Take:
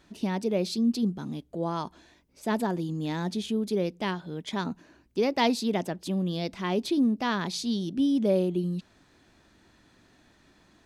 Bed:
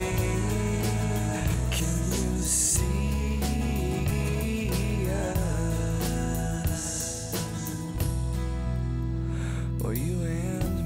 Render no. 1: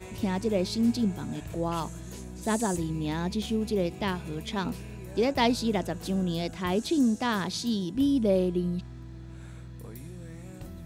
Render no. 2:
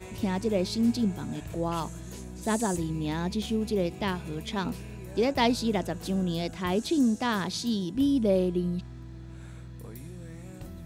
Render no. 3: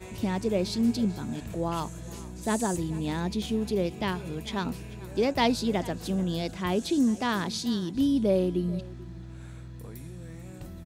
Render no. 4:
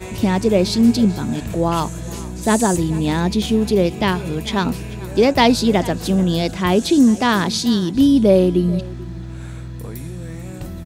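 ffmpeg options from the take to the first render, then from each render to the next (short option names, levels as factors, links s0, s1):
-filter_complex "[1:a]volume=0.2[s0];[0:a][s0]amix=inputs=2:normalize=0"
-af anull
-af "aecho=1:1:439:0.106"
-af "volume=3.76,alimiter=limit=0.891:level=0:latency=1"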